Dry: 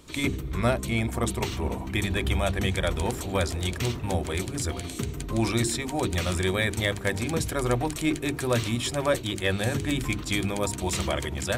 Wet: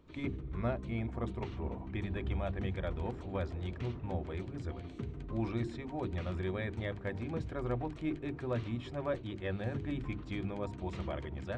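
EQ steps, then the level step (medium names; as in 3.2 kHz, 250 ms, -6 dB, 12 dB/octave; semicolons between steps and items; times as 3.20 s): tape spacing loss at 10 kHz 36 dB; -8.5 dB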